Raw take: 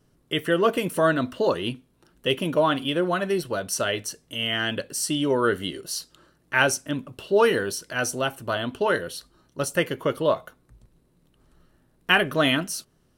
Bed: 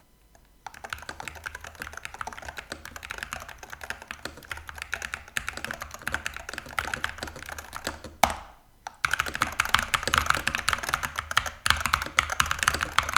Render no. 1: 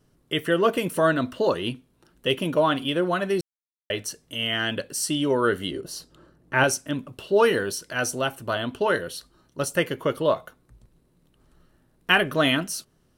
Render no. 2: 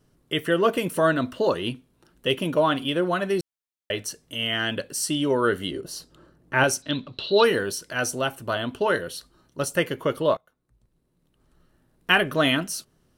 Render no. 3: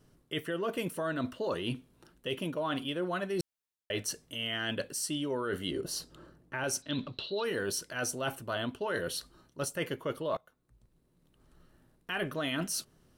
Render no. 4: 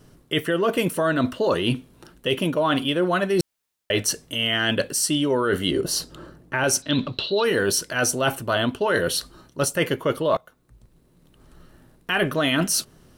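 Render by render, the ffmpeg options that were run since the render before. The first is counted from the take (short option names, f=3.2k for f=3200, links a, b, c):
-filter_complex "[0:a]asettb=1/sr,asplit=3[a][b][c];[a]atrim=end=5.714[d];[b]atrim=start=5.71:end=6.64,asetpts=PTS-STARTPTS,afade=t=in:d=0.004:c=qsin,afade=t=out:st=0.926:d=0.004:c=qsin,tiltshelf=f=1.2k:g=6.5[e];[c]atrim=start=6.636[f];[d][e]acrossfade=d=0.004:c1=hsin:c2=qsin[g];[g][f]acrossfade=d=0.004:c1=qsin:c2=hsin,asplit=3[h][i][j];[h]atrim=end=3.41,asetpts=PTS-STARTPTS,afade=t=out:st=3.406:d=0.004:c=hsin[k];[i]atrim=start=3.41:end=3.9,asetpts=PTS-STARTPTS,volume=0[l];[j]atrim=start=3.9,asetpts=PTS-STARTPTS,afade=t=in:d=0.004:c=hsin[m];[k][l][m]concat=n=3:v=0:a=1"
-filter_complex "[0:a]asettb=1/sr,asplit=3[a][b][c];[a]atrim=end=6.824[d];[b]atrim=start=6.82:end=7.44,asetpts=PTS-STARTPTS,afade=t=in:d=0.004:c=qsin,afade=t=out:st=0.616:d=0.004:c=qsin,lowpass=f=4k:t=q:w=15[e];[c]atrim=start=7.436[f];[d][e]acrossfade=d=0.004:c1=hsin:c2=qsin[g];[g][f]acrossfade=d=0.004:c1=qsin:c2=hsin,asplit=2[h][i];[h]atrim=end=10.37,asetpts=PTS-STARTPTS,afade=t=out:st=10.366:d=0.004:c=hsin:silence=0.0630957[j];[i]atrim=start=10.37,asetpts=PTS-STARTPTS,afade=t=in:d=1.74:silence=0.0630957[k];[j][k]concat=n=2:v=0:a=1"
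-af "alimiter=limit=-13.5dB:level=0:latency=1:release=57,areverse,acompressor=threshold=-31dB:ratio=6,areverse"
-af "volume=12dB"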